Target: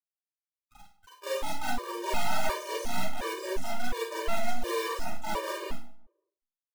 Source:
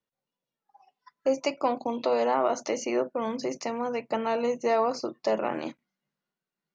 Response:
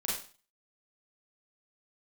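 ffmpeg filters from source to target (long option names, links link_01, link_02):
-filter_complex "[0:a]highpass=frequency=300:poles=1,highshelf=frequency=2500:gain=-8,aecho=1:1:4.9:0.78,acompressor=threshold=-27dB:ratio=3,acrusher=bits=5:dc=4:mix=0:aa=0.000001,asplit=2[link_01][link_02];[link_02]asetrate=66075,aresample=44100,atempo=0.66742,volume=-3dB[link_03];[link_01][link_03]amix=inputs=2:normalize=0,volume=27dB,asoftclip=hard,volume=-27dB,asplit=2[link_04][link_05];[link_05]adelay=174,lowpass=frequency=980:poles=1,volume=-21dB,asplit=2[link_06][link_07];[link_07]adelay=174,lowpass=frequency=980:poles=1,volume=0.39,asplit=2[link_08][link_09];[link_09]adelay=174,lowpass=frequency=980:poles=1,volume=0.39[link_10];[link_04][link_06][link_08][link_10]amix=inputs=4:normalize=0[link_11];[1:a]atrim=start_sample=2205[link_12];[link_11][link_12]afir=irnorm=-1:irlink=0,afftfilt=real='re*gt(sin(2*PI*1.4*pts/sr)*(1-2*mod(floor(b*sr/1024/310),2)),0)':imag='im*gt(sin(2*PI*1.4*pts/sr)*(1-2*mod(floor(b*sr/1024/310),2)),0)':win_size=1024:overlap=0.75"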